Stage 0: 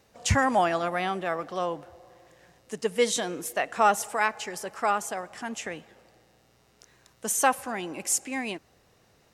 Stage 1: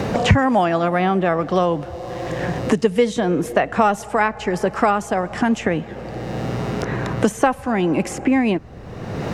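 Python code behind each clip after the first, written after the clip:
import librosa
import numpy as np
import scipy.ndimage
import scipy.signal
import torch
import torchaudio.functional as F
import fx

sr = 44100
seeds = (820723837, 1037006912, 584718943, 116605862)

y = fx.riaa(x, sr, side='playback')
y = fx.band_squash(y, sr, depth_pct=100)
y = F.gain(torch.from_numpy(y), 8.0).numpy()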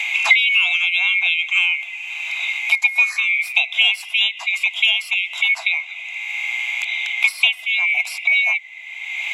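y = fx.band_swap(x, sr, width_hz=2000)
y = fx.brickwall_highpass(y, sr, low_hz=630.0)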